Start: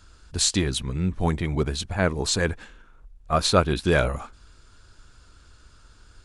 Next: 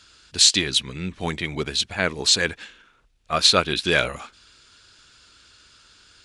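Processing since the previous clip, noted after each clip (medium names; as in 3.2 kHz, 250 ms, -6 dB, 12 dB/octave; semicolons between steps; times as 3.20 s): frequency weighting D; trim -1.5 dB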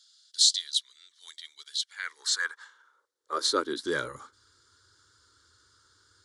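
high-pass sweep 3.5 kHz -> 95 Hz, 1.67–4.42 s; static phaser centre 690 Hz, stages 6; trim -7 dB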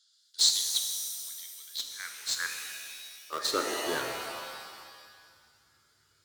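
in parallel at -3 dB: small samples zeroed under -22.5 dBFS; on the sum: pitch-shifted reverb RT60 1.8 s, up +7 st, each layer -2 dB, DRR 4 dB; trim -7.5 dB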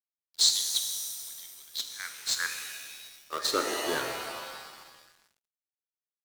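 gain riding within 3 dB 2 s; crossover distortion -50.5 dBFS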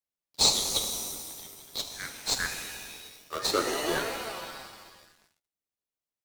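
flange 0.48 Hz, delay 3.5 ms, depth 9.9 ms, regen +40%; in parallel at -9.5 dB: sample-and-hold 26×; on the sum: trim +4 dB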